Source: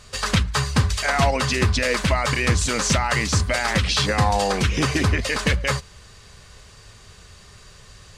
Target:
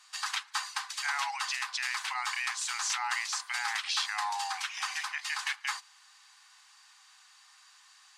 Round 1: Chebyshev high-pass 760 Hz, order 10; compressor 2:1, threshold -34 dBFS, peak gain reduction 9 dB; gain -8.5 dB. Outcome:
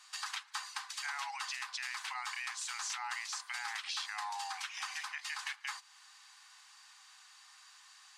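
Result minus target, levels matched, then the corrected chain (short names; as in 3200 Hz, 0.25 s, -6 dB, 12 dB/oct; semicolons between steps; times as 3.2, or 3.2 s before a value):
compressor: peak gain reduction +9 dB
Chebyshev high-pass 760 Hz, order 10; gain -8.5 dB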